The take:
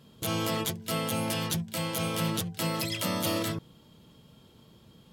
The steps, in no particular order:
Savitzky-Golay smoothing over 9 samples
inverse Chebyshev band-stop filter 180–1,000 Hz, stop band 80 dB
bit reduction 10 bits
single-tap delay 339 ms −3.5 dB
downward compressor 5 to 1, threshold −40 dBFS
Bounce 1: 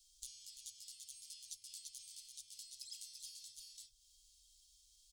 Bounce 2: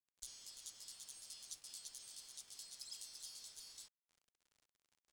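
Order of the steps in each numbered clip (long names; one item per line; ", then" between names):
single-tap delay, then bit reduction, then Savitzky-Golay smoothing, then downward compressor, then inverse Chebyshev band-stop filter
single-tap delay, then downward compressor, then inverse Chebyshev band-stop filter, then bit reduction, then Savitzky-Golay smoothing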